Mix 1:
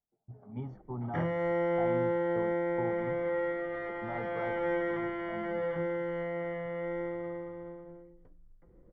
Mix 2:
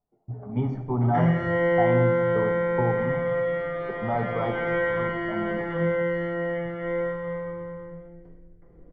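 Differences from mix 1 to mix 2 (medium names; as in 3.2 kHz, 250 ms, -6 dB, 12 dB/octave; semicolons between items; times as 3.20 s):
speech +11.5 dB; reverb: on, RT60 1.1 s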